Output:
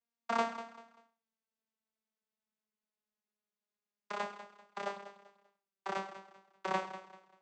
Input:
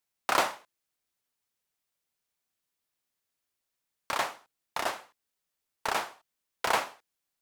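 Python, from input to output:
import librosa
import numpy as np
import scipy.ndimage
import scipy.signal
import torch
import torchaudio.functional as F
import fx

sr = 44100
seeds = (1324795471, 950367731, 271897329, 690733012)

y = fx.vocoder_glide(x, sr, note=58, semitones=-4)
y = fx.echo_feedback(y, sr, ms=195, feedback_pct=31, wet_db=-13.0)
y = y * librosa.db_to_amplitude(-6.0)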